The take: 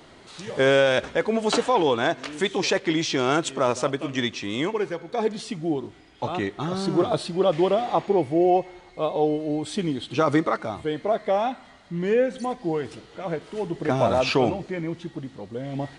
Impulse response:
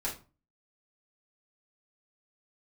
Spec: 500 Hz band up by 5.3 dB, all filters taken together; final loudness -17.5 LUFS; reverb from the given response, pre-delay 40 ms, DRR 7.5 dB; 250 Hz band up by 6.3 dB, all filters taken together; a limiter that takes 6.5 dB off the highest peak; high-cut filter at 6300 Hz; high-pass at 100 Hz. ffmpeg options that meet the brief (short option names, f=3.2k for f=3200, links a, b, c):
-filter_complex "[0:a]highpass=100,lowpass=6.3k,equalizer=f=250:t=o:g=7,equalizer=f=500:t=o:g=4.5,alimiter=limit=-10dB:level=0:latency=1,asplit=2[a][b];[1:a]atrim=start_sample=2205,adelay=40[c];[b][c]afir=irnorm=-1:irlink=0,volume=-11.5dB[d];[a][d]amix=inputs=2:normalize=0,volume=3.5dB"